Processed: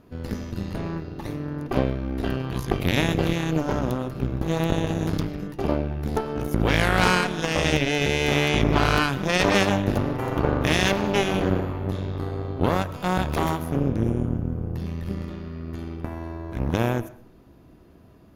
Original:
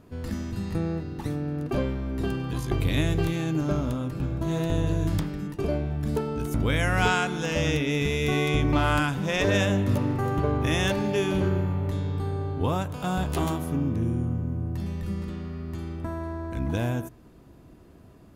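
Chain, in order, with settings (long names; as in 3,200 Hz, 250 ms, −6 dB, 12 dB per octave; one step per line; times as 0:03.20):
parametric band 8,100 Hz −12.5 dB 0.29 octaves
mains-hum notches 50/100/150 Hz
harmonic generator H 4 −6 dB, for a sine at −10 dBFS
on a send: convolution reverb RT60 0.50 s, pre-delay 70 ms, DRR 18 dB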